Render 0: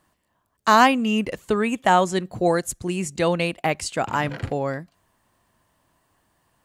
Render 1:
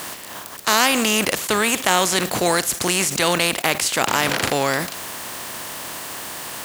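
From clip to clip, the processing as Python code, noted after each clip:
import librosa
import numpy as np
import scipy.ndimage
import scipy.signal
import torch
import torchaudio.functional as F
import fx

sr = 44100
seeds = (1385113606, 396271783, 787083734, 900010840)

y = fx.spec_flatten(x, sr, power=0.49)
y = fx.highpass(y, sr, hz=240.0, slope=6)
y = fx.env_flatten(y, sr, amount_pct=70)
y = y * 10.0 ** (-3.0 / 20.0)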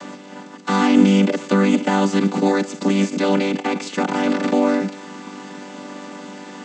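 y = fx.chord_vocoder(x, sr, chord='major triad', root=55)
y = fx.low_shelf(y, sr, hz=210.0, db=11.0)
y = y + 10.0 ** (-21.0 / 20.0) * np.pad(y, (int(140 * sr / 1000.0), 0))[:len(y)]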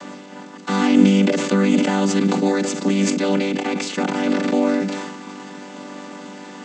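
y = fx.dynamic_eq(x, sr, hz=1000.0, q=1.4, threshold_db=-33.0, ratio=4.0, max_db=-4)
y = fx.sustainer(y, sr, db_per_s=42.0)
y = y * 10.0 ** (-1.0 / 20.0)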